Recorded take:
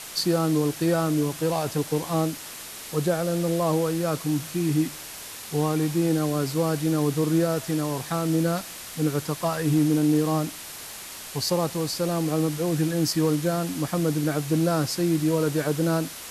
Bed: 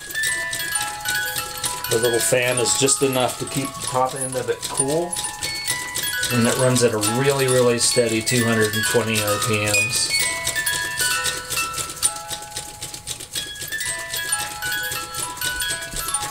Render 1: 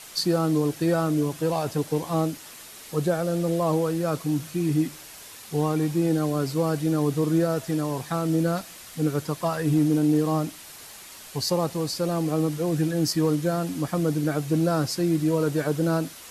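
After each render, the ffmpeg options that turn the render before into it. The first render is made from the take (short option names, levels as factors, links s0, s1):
-af "afftdn=nr=6:nf=-39"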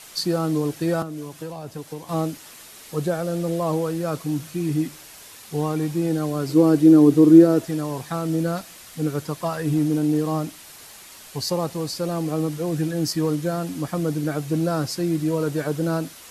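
-filter_complex "[0:a]asettb=1/sr,asplit=3[s0][s1][s2];[s0]atrim=end=1.024[s3];[s1]atrim=start=1.02:end=2.09,asetpts=PTS-STARTPTS,afade=t=in:d=0.004:c=qsin,afade=t=out:st=1.066:d=0.004:c=qsin,acrossover=split=320|660[s4][s5][s6];[s4]acompressor=threshold=0.0158:ratio=4[s7];[s5]acompressor=threshold=0.01:ratio=4[s8];[s6]acompressor=threshold=0.00794:ratio=4[s9];[s7][s8][s9]amix=inputs=3:normalize=0[s10];[s2]atrim=start=2.086[s11];[s3][s10]acrossfade=d=0.004:c1=hsin:c2=qsin[s12];[s12][s11]acrossfade=d=0.004:c1=qsin:c2=hsin,asettb=1/sr,asplit=3[s13][s14][s15];[s13]atrim=end=6.494[s16];[s14]atrim=start=6.49:end=7.66,asetpts=PTS-STARTPTS,afade=t=in:d=0.004:c=qsin,afade=t=out:st=1.166:d=0.004:c=qsin,equalizer=f=320:w=1.5:g=14[s17];[s15]atrim=start=7.656[s18];[s16][s17]acrossfade=d=0.004:c1=hsin:c2=qsin[s19];[s19][s18]acrossfade=d=0.004:c1=qsin:c2=hsin"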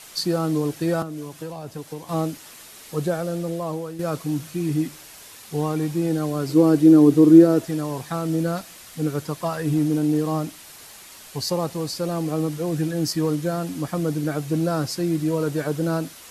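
-filter_complex "[0:a]asplit=2[s0][s1];[s0]atrim=end=3.99,asetpts=PTS-STARTPTS,afade=t=out:st=3.14:d=0.85:silence=0.334965[s2];[s1]atrim=start=3.99,asetpts=PTS-STARTPTS,afade=t=in:d=0.004:c=hsin:silence=0.334965[s3];[s2][s3]concat=n=2:v=0:a=1"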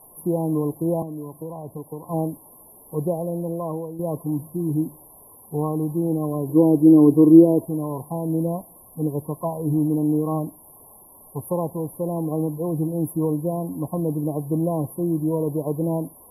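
-af "afftfilt=real='re*(1-between(b*sr/4096,1100,9900))':imag='im*(1-between(b*sr/4096,1100,9900))':win_size=4096:overlap=0.75"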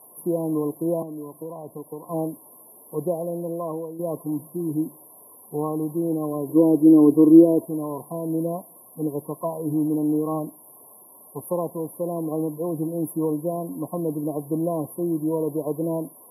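-af "highpass=220,bandreject=f=830:w=12"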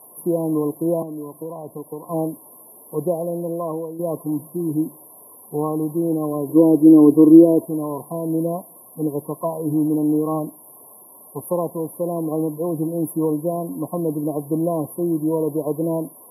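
-af "volume=1.5,alimiter=limit=0.891:level=0:latency=1"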